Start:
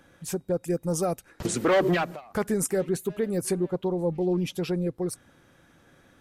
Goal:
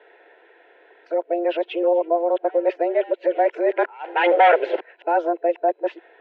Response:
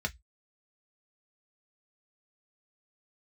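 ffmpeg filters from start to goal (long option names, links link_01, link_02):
-af "areverse,asuperstop=centerf=1000:order=4:qfactor=3.8,highpass=frequency=200:width_type=q:width=0.5412,highpass=frequency=200:width_type=q:width=1.307,lowpass=frequency=2900:width_type=q:width=0.5176,lowpass=frequency=2900:width_type=q:width=0.7071,lowpass=frequency=2900:width_type=q:width=1.932,afreqshift=170,volume=7.5dB"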